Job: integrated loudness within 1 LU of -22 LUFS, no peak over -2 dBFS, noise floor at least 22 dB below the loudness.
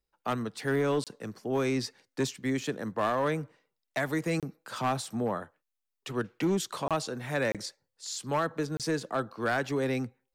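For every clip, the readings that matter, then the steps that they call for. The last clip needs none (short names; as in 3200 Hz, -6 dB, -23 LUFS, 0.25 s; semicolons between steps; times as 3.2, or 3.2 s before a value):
clipped 1.1%; flat tops at -21.5 dBFS; dropouts 5; longest dropout 27 ms; loudness -32.0 LUFS; peak -21.5 dBFS; loudness target -22.0 LUFS
-> clip repair -21.5 dBFS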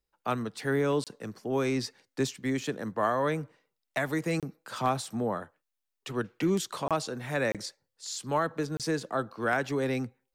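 clipped 0.0%; dropouts 5; longest dropout 27 ms
-> interpolate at 1.04/4.4/6.88/7.52/8.77, 27 ms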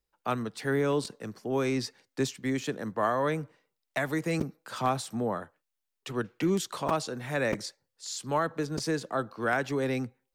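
dropouts 0; loudness -31.0 LUFS; peak -12.5 dBFS; loudness target -22.0 LUFS
-> gain +9 dB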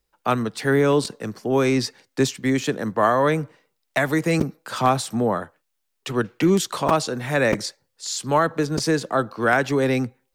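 loudness -22.0 LUFS; peak -3.5 dBFS; noise floor -75 dBFS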